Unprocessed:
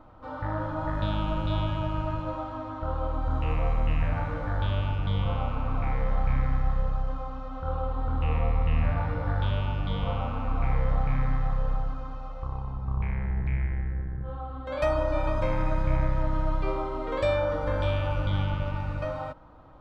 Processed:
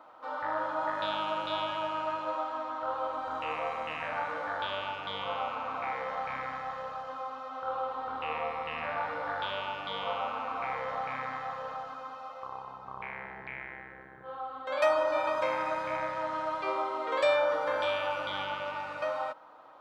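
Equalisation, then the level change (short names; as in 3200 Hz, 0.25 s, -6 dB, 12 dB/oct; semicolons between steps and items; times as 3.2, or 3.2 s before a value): HPF 630 Hz 12 dB/oct; +3.5 dB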